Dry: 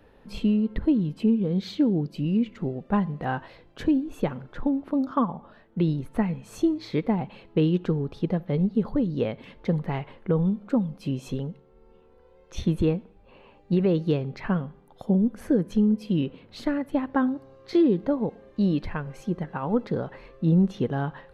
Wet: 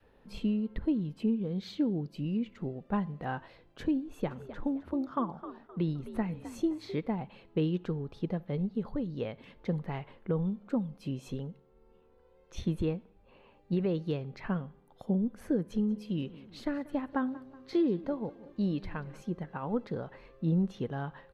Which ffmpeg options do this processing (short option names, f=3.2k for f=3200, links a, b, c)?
-filter_complex "[0:a]asplit=3[a][b][c];[a]afade=t=out:st=4.26:d=0.02[d];[b]asplit=4[e][f][g][h];[f]adelay=260,afreqshift=61,volume=-13.5dB[i];[g]adelay=520,afreqshift=122,volume=-23.1dB[j];[h]adelay=780,afreqshift=183,volume=-32.8dB[k];[e][i][j][k]amix=inputs=4:normalize=0,afade=t=in:st=4.26:d=0.02,afade=t=out:st=6.95:d=0.02[l];[c]afade=t=in:st=6.95:d=0.02[m];[d][l][m]amix=inputs=3:normalize=0,asettb=1/sr,asplit=3[n][o][p];[n]atrim=end=15.554[q];[o]atrim=start=15.55:end=19.22,asetpts=PTS-STARTPTS,afade=t=in:d=0.004:c=qsin,afade=t=out:st=3.666:d=0.004:c=qsin,aecho=1:1:186|372|558|744:0.112|0.0527|0.0248|0.0116,atrim=end_sample=161847[r];[p]atrim=start=19.216[s];[q][r]acrossfade=d=0.004:c1=hsin:c2=qsin[t];[t][s]acrossfade=d=0.004:c1=qsin:c2=hsin,adynamicequalizer=threshold=0.0282:dfrequency=270:dqfactor=0.72:tfrequency=270:tqfactor=0.72:attack=5:release=100:ratio=0.375:range=2.5:mode=cutabove:tftype=bell,volume=-7dB"